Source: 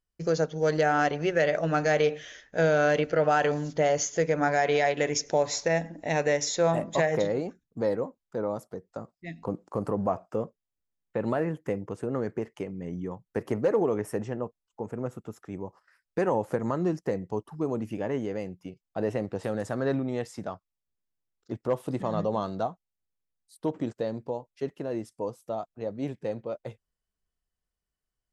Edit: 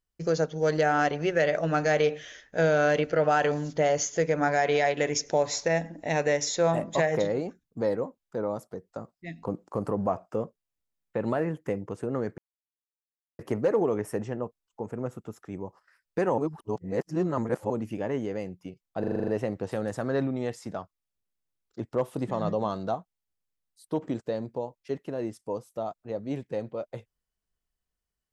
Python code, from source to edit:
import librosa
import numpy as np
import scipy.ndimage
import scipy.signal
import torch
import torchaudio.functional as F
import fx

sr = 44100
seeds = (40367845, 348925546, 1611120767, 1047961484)

y = fx.edit(x, sr, fx.silence(start_s=12.38, length_s=1.01),
    fx.reverse_span(start_s=16.38, length_s=1.32),
    fx.stutter(start_s=19.0, slice_s=0.04, count=8), tone=tone)